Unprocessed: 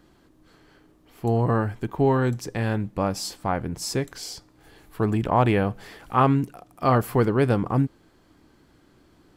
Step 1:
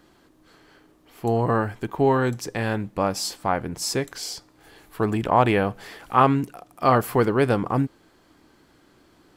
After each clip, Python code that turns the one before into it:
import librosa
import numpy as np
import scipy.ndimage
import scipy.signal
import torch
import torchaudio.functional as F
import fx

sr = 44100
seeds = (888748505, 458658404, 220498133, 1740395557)

y = fx.low_shelf(x, sr, hz=240.0, db=-8.0)
y = y * librosa.db_to_amplitude(3.5)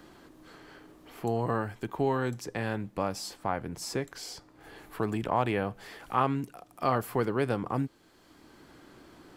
y = fx.band_squash(x, sr, depth_pct=40)
y = y * librosa.db_to_amplitude(-8.0)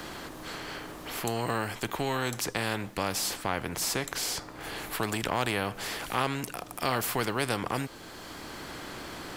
y = fx.spectral_comp(x, sr, ratio=2.0)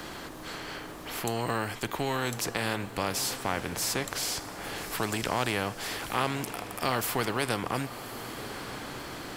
y = fx.echo_diffused(x, sr, ms=1123, feedback_pct=41, wet_db=-12.0)